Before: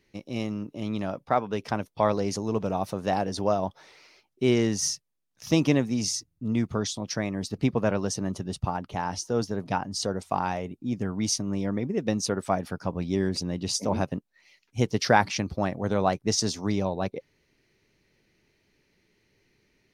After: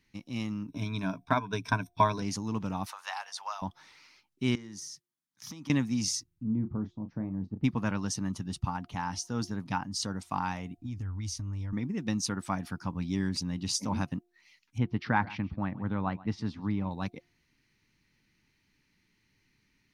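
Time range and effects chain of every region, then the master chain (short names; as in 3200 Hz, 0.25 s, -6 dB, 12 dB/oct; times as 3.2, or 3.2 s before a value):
0.68–2.22 ripple EQ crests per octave 1.6, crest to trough 14 dB + transient shaper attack +5 dB, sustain -2 dB
2.86–3.62 inverse Chebyshev high-pass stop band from 310 Hz, stop band 50 dB + three-band squash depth 40%
4.55–5.7 HPF 120 Hz + notch 2700 Hz, Q 7.5 + compressor 12:1, threshold -36 dBFS
6.43–7.64 Chebyshev low-pass 540 Hz + doubler 32 ms -9.5 dB
10.77–11.73 resonant low shelf 120 Hz +11.5 dB, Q 3 + compressor 10:1, threshold -30 dBFS
14.78–16.91 air absorption 460 m + echo 0.134 s -20 dB
whole clip: band shelf 510 Hz -12 dB 1.2 oct; de-hum 352.6 Hz, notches 2; gain -2.5 dB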